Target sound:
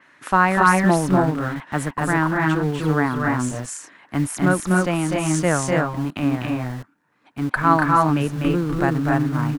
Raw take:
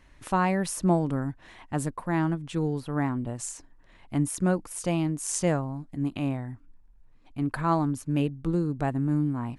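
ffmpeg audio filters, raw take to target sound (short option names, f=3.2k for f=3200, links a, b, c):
-filter_complex "[0:a]equalizer=f=1.5k:w=1.2:g=10.5,aecho=1:1:247.8|279.9:0.631|0.794,acrossover=split=150|1100|3100[a][b][c][d];[a]acrusher=bits=6:mix=0:aa=0.000001[e];[e][b][c][d]amix=inputs=4:normalize=0,adynamicequalizer=threshold=0.00891:dfrequency=5200:dqfactor=0.7:tfrequency=5200:tqfactor=0.7:attack=5:release=100:ratio=0.375:range=2:mode=cutabove:tftype=highshelf,volume=3.5dB"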